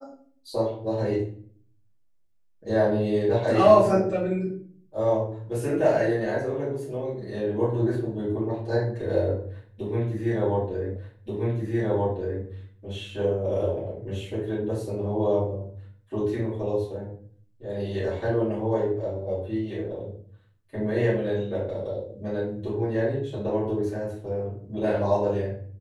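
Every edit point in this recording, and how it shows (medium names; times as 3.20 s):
10.96 s: repeat of the last 1.48 s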